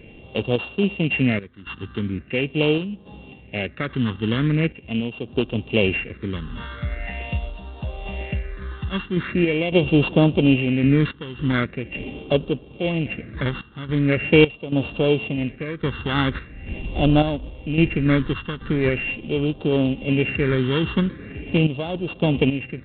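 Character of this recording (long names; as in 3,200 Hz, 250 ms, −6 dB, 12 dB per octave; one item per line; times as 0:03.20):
a buzz of ramps at a fixed pitch in blocks of 16 samples
sample-and-hold tremolo 3.6 Hz, depth 85%
phaser sweep stages 6, 0.42 Hz, lowest notch 620–2,000 Hz
G.726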